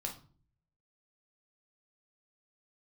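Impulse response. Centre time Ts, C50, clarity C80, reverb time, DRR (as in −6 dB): 17 ms, 10.0 dB, 16.0 dB, 0.45 s, 1.0 dB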